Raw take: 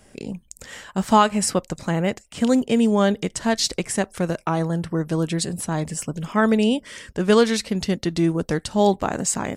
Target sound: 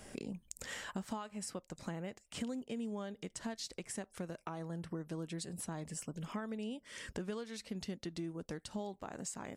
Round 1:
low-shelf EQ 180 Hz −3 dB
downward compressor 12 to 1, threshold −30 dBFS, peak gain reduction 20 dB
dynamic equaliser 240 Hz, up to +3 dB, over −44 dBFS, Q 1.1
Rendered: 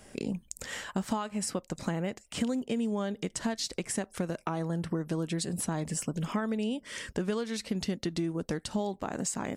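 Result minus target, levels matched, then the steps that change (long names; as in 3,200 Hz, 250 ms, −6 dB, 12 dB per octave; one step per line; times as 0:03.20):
downward compressor: peak gain reduction −9.5 dB
change: downward compressor 12 to 1, threshold −40.5 dBFS, peak gain reduction 30 dB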